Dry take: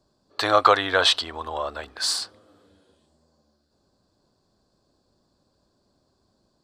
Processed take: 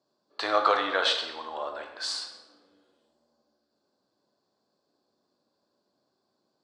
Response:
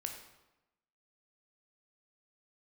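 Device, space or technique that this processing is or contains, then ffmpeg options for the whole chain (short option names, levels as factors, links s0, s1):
supermarket ceiling speaker: -filter_complex "[0:a]highpass=250,lowpass=6300[s0];[1:a]atrim=start_sample=2205[s1];[s0][s1]afir=irnorm=-1:irlink=0,volume=0.596"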